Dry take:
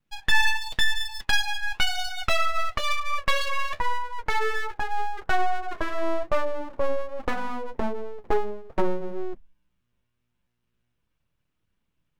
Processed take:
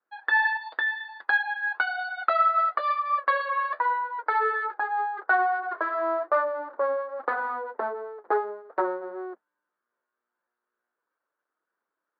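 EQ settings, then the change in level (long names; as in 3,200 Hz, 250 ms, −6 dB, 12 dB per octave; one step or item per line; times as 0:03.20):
high-pass filter 380 Hz 24 dB per octave
linear-phase brick-wall low-pass 4,800 Hz
high shelf with overshoot 2,000 Hz −10.5 dB, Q 3
0.0 dB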